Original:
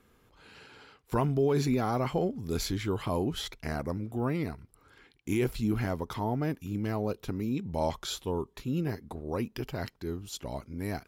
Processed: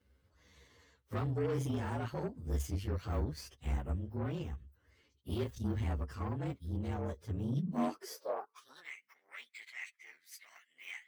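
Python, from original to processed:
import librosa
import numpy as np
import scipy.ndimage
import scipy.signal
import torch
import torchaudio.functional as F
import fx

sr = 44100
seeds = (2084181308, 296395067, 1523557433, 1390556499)

y = fx.partial_stretch(x, sr, pct=114)
y = fx.cheby_harmonics(y, sr, harmonics=(8,), levels_db=(-21,), full_scale_db=-17.0)
y = fx.filter_sweep_highpass(y, sr, from_hz=69.0, to_hz=2100.0, start_s=7.17, end_s=8.93, q=7.5)
y = y * 10.0 ** (-8.0 / 20.0)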